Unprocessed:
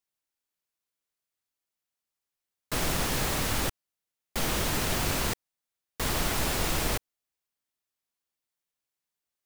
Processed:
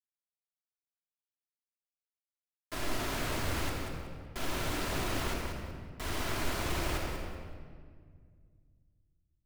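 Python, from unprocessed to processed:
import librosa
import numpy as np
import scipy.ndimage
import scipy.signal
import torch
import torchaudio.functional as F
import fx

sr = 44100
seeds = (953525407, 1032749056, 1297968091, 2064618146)

y = fx.bass_treble(x, sr, bass_db=-3, treble_db=-6)
y = np.where(np.abs(y) >= 10.0 ** (-31.5 / 20.0), y, 0.0)
y = fx.echo_feedback(y, sr, ms=187, feedback_pct=23, wet_db=-7)
y = fx.room_shoebox(y, sr, seeds[0], volume_m3=3400.0, walls='mixed', distance_m=3.0)
y = fx.doppler_dist(y, sr, depth_ms=0.36)
y = y * librosa.db_to_amplitude(-8.5)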